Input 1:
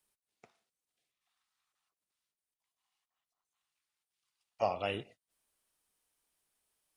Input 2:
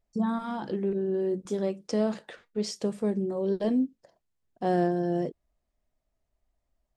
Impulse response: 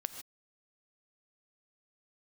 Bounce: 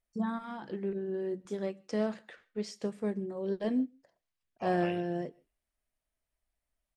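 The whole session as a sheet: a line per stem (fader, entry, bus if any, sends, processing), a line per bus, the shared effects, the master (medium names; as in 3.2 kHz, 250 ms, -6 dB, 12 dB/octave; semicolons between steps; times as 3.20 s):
-8.0 dB, 0.00 s, no send, echo send -13.5 dB, none
-5.5 dB, 0.00 s, send -13 dB, no echo send, none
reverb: on, pre-delay 3 ms
echo: feedback delay 120 ms, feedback 34%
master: peaking EQ 1.9 kHz +6.5 dB 1.2 oct; upward expansion 1.5:1, over -38 dBFS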